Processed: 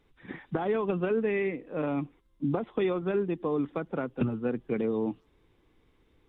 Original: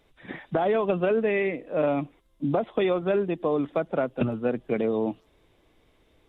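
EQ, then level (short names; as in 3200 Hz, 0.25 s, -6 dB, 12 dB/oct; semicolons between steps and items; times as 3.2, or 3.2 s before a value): bell 630 Hz -11 dB 0.47 oct; high shelf 2500 Hz -8.5 dB; -1.5 dB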